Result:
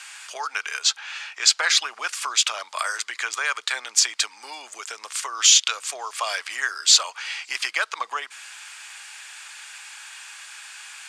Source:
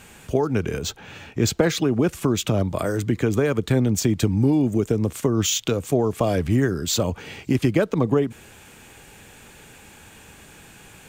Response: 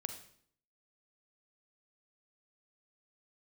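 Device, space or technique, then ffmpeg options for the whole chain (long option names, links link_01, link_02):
headphones lying on a table: -af "highpass=frequency=1100:width=0.5412,highpass=frequency=1100:width=1.3066,lowpass=frequency=10000:width=0.5412,lowpass=frequency=10000:width=1.3066,equalizer=frequency=4800:width_type=o:width=0.38:gain=6,volume=8dB"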